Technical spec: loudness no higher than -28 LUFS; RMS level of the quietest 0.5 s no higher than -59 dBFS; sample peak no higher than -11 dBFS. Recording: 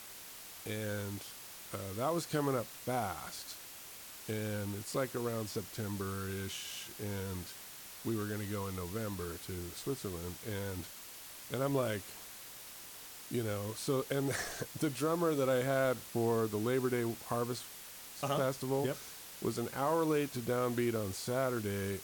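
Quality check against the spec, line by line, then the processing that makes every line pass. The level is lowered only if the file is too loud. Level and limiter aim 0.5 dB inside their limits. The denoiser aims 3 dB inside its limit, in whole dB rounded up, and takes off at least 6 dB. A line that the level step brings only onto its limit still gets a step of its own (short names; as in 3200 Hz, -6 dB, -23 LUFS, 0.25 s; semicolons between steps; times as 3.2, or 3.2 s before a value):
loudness -37.0 LUFS: OK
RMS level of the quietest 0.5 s -50 dBFS: fail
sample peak -20.0 dBFS: OK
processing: denoiser 12 dB, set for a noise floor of -50 dBFS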